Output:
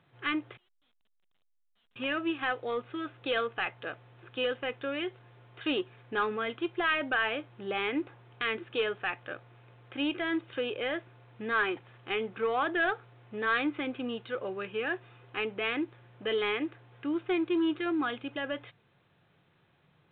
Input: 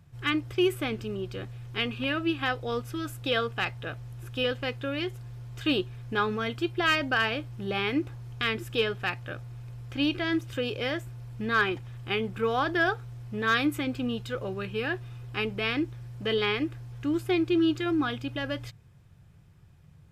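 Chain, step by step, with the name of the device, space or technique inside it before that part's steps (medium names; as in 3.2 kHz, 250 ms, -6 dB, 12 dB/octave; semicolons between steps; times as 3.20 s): 0.57–1.96 s: inverse Chebyshev band-stop 100–2000 Hz, stop band 80 dB; telephone (band-pass 310–3200 Hz; saturation -21 dBFS, distortion -16 dB; A-law 64 kbps 8 kHz)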